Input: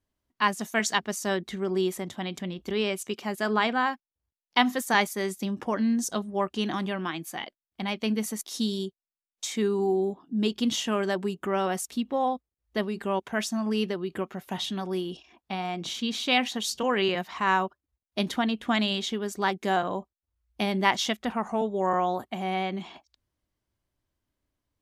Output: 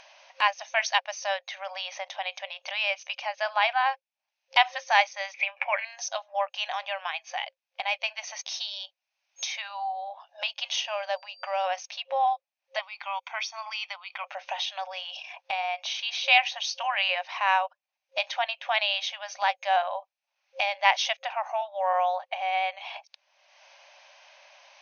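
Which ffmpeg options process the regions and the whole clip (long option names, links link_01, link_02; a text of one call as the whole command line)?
ffmpeg -i in.wav -filter_complex "[0:a]asettb=1/sr,asplit=3[link_01][link_02][link_03];[link_01]atrim=end=5.344[link_04];[link_02]atrim=start=5.34:end=5.85,asetpts=PTS-STARTPTS,afade=type=in:duration=0.004:curve=qsin,afade=type=out:start_time=0.506:duration=0.004:curve=qsin,acompressor=mode=upward:threshold=-32dB:ratio=2.5:attack=3.2:release=140:knee=2.83:detection=peak,lowpass=frequency=2300:width_type=q:width=13[link_05];[link_03]atrim=start=5.846[link_06];[link_04][link_05]acrossfade=duration=0.004:curve1=hsin:curve2=qsin[link_07];[link_07][link_06]acrossfade=duration=0.004:curve1=qsin:curve2=hsin,asettb=1/sr,asplit=3[link_08][link_09][link_10];[link_08]atrim=end=10.814[link_11];[link_09]atrim=start=10.81:end=11.64,asetpts=PTS-STARTPTS,afade=type=in:duration=0.004:curve=qsin,afade=type=out:start_time=0.826:duration=0.004:curve=qsin,aeval=exprs='val(0)+0.00251*sin(2*PI*4700*n/s)':channel_layout=same,equalizer=frequency=1700:width_type=o:width=1.3:gain=-4,adynamicsmooth=sensitivity=3.5:basefreq=5200[link_12];[link_10]atrim=start=11.636[link_13];[link_11][link_12]acrossfade=duration=0.004:curve1=hsin:curve2=qsin[link_14];[link_14][link_13]acrossfade=duration=0.004:curve1=qsin:curve2=hsin,asettb=1/sr,asplit=3[link_15][link_16][link_17];[link_15]atrim=end=12.794[link_18];[link_16]atrim=start=12.79:end=14.24,asetpts=PTS-STARTPTS,afade=type=in:duration=0.004:curve=qsin,afade=type=out:start_time=1.446:duration=0.004:curve=qsin,highpass=frequency=1300:poles=1,highshelf=frequency=5400:gain=-5.5,aecho=1:1:0.9:0.66,atrim=end_sample=63945[link_19];[link_17]atrim=start=14.236[link_20];[link_18][link_19]acrossfade=duration=0.004:curve1=hsin:curve2=qsin[link_21];[link_21][link_20]acrossfade=duration=0.004:curve1=qsin:curve2=hsin,afftfilt=real='re*between(b*sr/4096,530,6500)':imag='im*between(b*sr/4096,530,6500)':win_size=4096:overlap=0.75,equalizer=frequency=800:width_type=o:width=0.33:gain=5,equalizer=frequency=1250:width_type=o:width=0.33:gain=-5,equalizer=frequency=2500:width_type=o:width=0.33:gain=10,acompressor=mode=upward:threshold=-28dB:ratio=2.5" out.wav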